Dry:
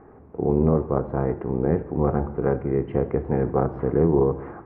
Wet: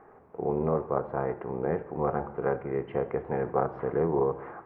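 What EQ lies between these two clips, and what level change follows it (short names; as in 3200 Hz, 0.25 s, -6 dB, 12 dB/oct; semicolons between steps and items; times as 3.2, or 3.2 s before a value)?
bell 64 Hz -10.5 dB 2.1 oct; low shelf 160 Hz -7.5 dB; bell 280 Hz -8.5 dB 1.1 oct; 0.0 dB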